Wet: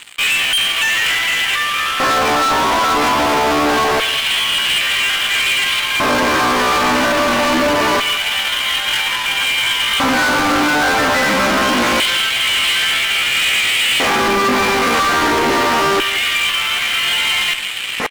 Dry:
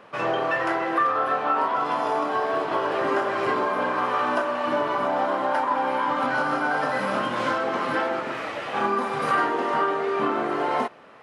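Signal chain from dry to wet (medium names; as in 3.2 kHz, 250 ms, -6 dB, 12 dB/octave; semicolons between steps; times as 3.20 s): peaking EQ 2.5 kHz +13.5 dB 0.92 oct; band-stop 2.6 kHz, Q 10; peak limiter -17.5 dBFS, peak gain reduction 10 dB; reverse; upward compressor, threshold -28 dBFS; reverse; tempo 0.62×; LFO high-pass square 0.25 Hz 240–3100 Hz; fuzz box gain 35 dB, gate -45 dBFS; speakerphone echo 170 ms, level -8 dB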